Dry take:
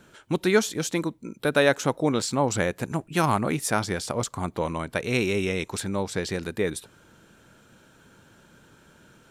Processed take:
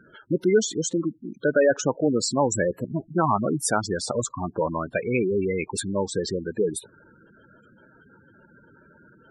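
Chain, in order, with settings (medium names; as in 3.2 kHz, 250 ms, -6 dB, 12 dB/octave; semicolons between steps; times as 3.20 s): spectral gate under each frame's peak -10 dB strong; bass shelf 180 Hz -8.5 dB; in parallel at -2 dB: peak limiter -18 dBFS, peak gain reduction 7 dB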